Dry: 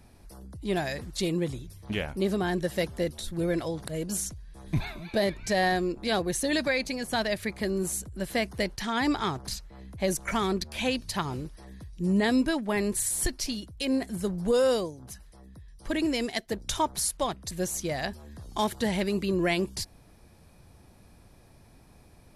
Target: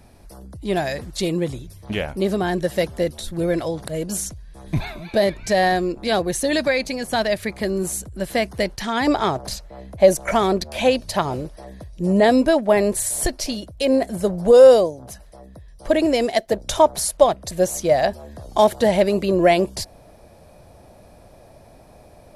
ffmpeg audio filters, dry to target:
-af "asetnsamples=n=441:p=0,asendcmd='9.07 equalizer g 14',equalizer=f=610:t=o:w=0.8:g=4.5,volume=5dB"

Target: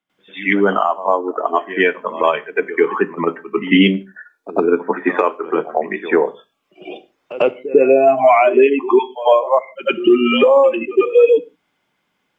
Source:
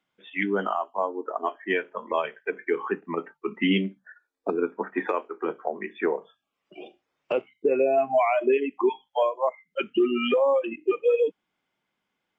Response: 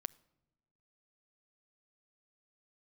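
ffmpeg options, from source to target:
-filter_complex "[0:a]asplit=2[a][b];[1:a]atrim=start_sample=2205,afade=t=out:st=0.21:d=0.01,atrim=end_sample=9702,adelay=97[c];[b][c]afir=irnorm=-1:irlink=0,volume=17.5dB[d];[a][d]amix=inputs=2:normalize=0,volume=-4dB"

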